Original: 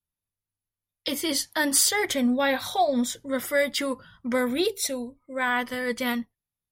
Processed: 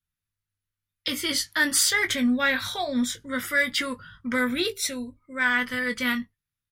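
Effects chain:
drawn EQ curve 120 Hz 0 dB, 800 Hz −13 dB, 1,400 Hz +2 dB, 13,000 Hz −7 dB
in parallel at −4.5 dB: soft clipping −19 dBFS, distortion −19 dB
on the sum: double-tracking delay 20 ms −9 dB

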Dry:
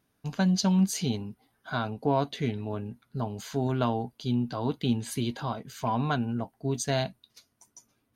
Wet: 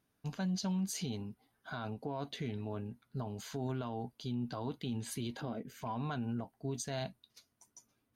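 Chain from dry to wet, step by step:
0:05.41–0:05.82: octave-band graphic EQ 125/250/500/1,000/2,000/4,000/8,000 Hz −4/+7/+6/−11/+4/−8/−4 dB
brickwall limiter −23.5 dBFS, peak gain reduction 10.5 dB
level −5.5 dB

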